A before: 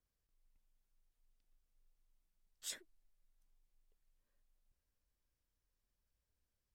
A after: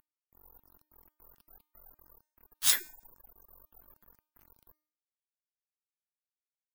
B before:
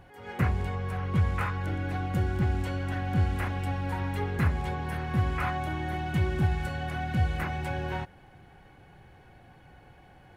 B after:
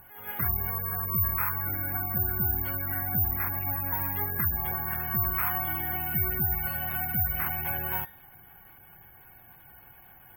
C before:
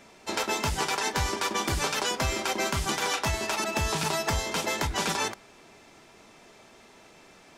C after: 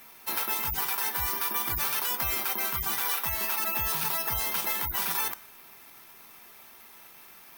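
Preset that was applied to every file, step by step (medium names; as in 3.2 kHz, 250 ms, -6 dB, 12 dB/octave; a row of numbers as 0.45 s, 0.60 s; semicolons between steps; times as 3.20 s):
CVSD coder 64 kbps; de-hum 305.1 Hz, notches 40; spectral gate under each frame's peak -25 dB strong; resonant low shelf 770 Hz -6.5 dB, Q 1.5; careless resampling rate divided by 3×, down filtered, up zero stuff; loudness maximiser +14 dB; normalise loudness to -27 LUFS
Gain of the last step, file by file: +3.5 dB, -13.0 dB, -14.5 dB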